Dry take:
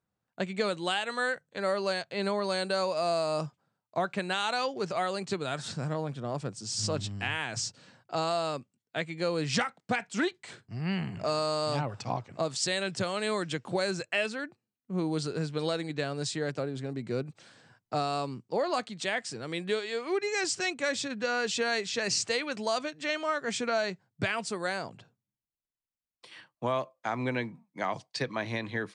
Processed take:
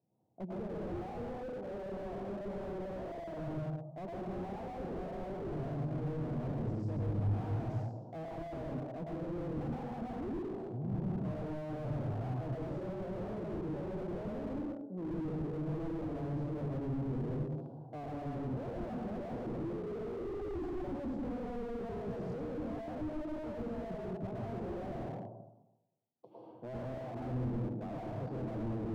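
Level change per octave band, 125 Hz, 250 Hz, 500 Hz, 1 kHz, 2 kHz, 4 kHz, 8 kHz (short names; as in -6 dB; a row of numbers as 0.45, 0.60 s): +0.5 dB, -2.5 dB, -8.5 dB, -12.0 dB, -22.5 dB, under -25 dB, under -30 dB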